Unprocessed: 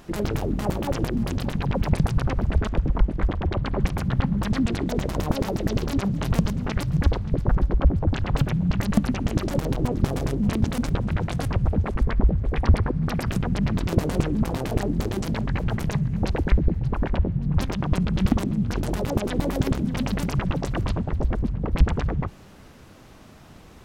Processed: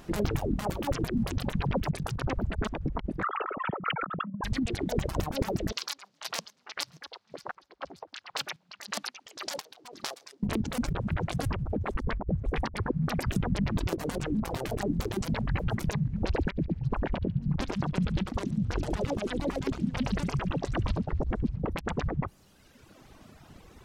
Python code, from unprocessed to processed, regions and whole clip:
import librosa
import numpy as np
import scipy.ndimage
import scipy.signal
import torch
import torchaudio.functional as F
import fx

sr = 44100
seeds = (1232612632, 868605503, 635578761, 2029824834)

y = fx.chain(x, sr, fx.sine_speech(),
    fx.small_body(hz=(1300.0,), ring_ms=25, db=18),
    fx.env_flatten(amount_pct=70), at=(3.23, 4.44))
y = fx.chain(y, sr, fx.highpass(hz=830.0, slope=12),
    fx.peak_eq(hz=4800.0, db=10.5, octaves=1.2),
    fx.chopper(hz=1.9, depth_pct=65, duty_pct=40), at=(5.72, 10.43))
y = fx.chain(y, sr, fx.air_absorb(metres=62.0),
    fx.echo_wet_highpass(ms=71, feedback_pct=65, hz=2800.0, wet_db=-6.0), at=(15.95, 21.61))
y = fx.dereverb_blind(y, sr, rt60_s=1.4)
y = fx.over_compress(y, sr, threshold_db=-23.0, ratio=-0.5)
y = y * 10.0 ** (-4.0 / 20.0)